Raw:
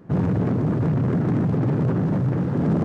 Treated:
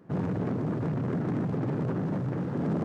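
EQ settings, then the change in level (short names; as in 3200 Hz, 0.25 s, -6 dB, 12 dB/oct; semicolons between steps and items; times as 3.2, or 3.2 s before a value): low shelf 110 Hz -10.5 dB; -5.5 dB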